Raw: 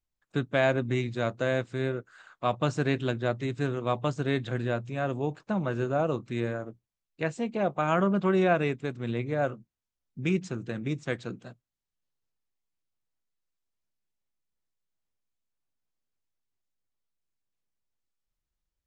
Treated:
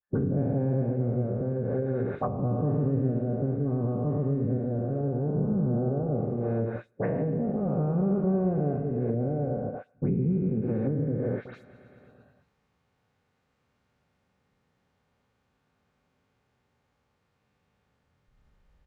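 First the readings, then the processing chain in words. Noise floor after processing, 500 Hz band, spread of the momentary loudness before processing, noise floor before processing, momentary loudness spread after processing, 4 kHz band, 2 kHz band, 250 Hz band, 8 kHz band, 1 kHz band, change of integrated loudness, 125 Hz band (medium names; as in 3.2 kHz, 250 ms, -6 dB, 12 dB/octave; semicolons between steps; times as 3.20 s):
-75 dBFS, -1.0 dB, 9 LU, under -85 dBFS, 4 LU, under -25 dB, -16.0 dB, +3.5 dB, no reading, -6.5 dB, +1.0 dB, +5.5 dB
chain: every event in the spectrogram widened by 480 ms; distance through air 70 m; transient shaper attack +2 dB, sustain -12 dB; treble shelf 3.4 kHz -10 dB; modulation noise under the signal 33 dB; on a send: feedback delay 113 ms, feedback 52%, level -8.5 dB; on the sum: gate -28 dBFS, range -34 dB; phase dispersion highs, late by 110 ms, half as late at 2.9 kHz; reverse; upward compressor, threshold -40 dBFS; reverse; comb of notches 330 Hz; low-pass that closes with the level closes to 310 Hz, closed at -21.5 dBFS; three bands compressed up and down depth 40%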